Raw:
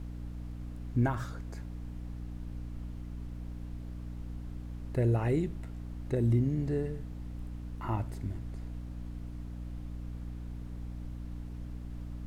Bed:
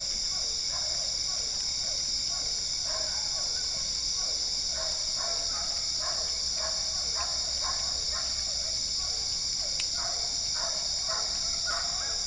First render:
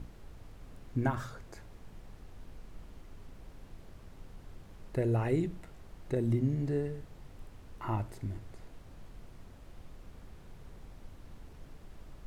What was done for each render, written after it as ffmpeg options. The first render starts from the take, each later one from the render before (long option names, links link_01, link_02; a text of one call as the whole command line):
ffmpeg -i in.wav -af "bandreject=frequency=60:width_type=h:width=6,bandreject=frequency=120:width_type=h:width=6,bandreject=frequency=180:width_type=h:width=6,bandreject=frequency=240:width_type=h:width=6,bandreject=frequency=300:width_type=h:width=6" out.wav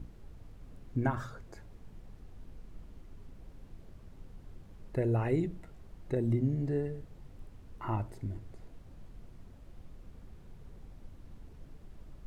ffmpeg -i in.wav -af "afftdn=noise_reduction=6:noise_floor=-53" out.wav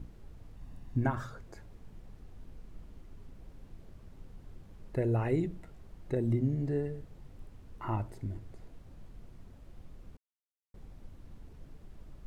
ffmpeg -i in.wav -filter_complex "[0:a]asettb=1/sr,asplit=3[link_01][link_02][link_03];[link_01]atrim=end=0.564[link_04];[link_02]atrim=start=0.56:end=1.05,asetpts=PTS-STARTPTS,afade=type=in:duration=0.004:curve=qsin,afade=type=out:start_time=0.486:duration=0.004:curve=qsin,aecho=1:1:1.1:0.47,atrim=end_sample=21609[link_05];[link_03]atrim=start=1.046[link_06];[link_04][link_05]acrossfade=duration=0.004:curve1=hsin:curve2=qsin[link_07];[link_07][link_06]acrossfade=duration=0.004:curve1=qsin:curve2=hsin,asplit=3[link_08][link_09][link_10];[link_08]atrim=end=10.17,asetpts=PTS-STARTPTS,afade=type=out:start_time=10.166:duration=0.004:curve=hsin[link_11];[link_09]atrim=start=10.17:end=10.74,asetpts=PTS-STARTPTS,volume=0[link_12];[link_10]atrim=start=10.74,asetpts=PTS-STARTPTS,afade=type=in:duration=0.004:curve=hsin[link_13];[link_11][link_12][link_13]concat=n=3:v=0:a=1" out.wav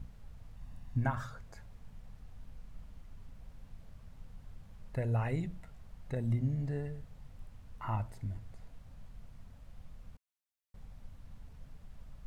ffmpeg -i in.wav -af "equalizer=frequency=350:width=2:gain=-15" out.wav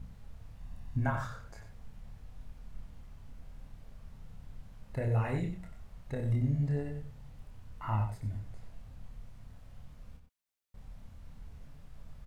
ffmpeg -i in.wav -filter_complex "[0:a]asplit=2[link_01][link_02];[link_02]adelay=28,volume=-4dB[link_03];[link_01][link_03]amix=inputs=2:normalize=0,asplit=2[link_04][link_05];[link_05]adelay=93.29,volume=-8dB,highshelf=frequency=4000:gain=-2.1[link_06];[link_04][link_06]amix=inputs=2:normalize=0" out.wav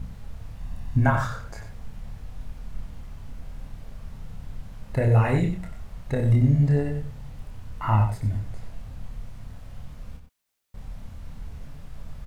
ffmpeg -i in.wav -af "volume=11dB" out.wav